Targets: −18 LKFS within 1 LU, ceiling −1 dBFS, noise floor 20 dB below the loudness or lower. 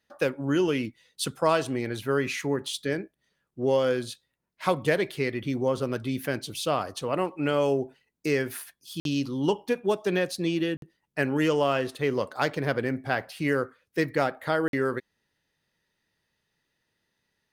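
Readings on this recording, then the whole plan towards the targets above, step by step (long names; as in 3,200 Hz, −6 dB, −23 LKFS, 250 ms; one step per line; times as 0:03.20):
number of dropouts 3; longest dropout 52 ms; integrated loudness −28.0 LKFS; sample peak −9.0 dBFS; target loudness −18.0 LKFS
→ repair the gap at 0:09.00/0:10.77/0:14.68, 52 ms
level +10 dB
brickwall limiter −1 dBFS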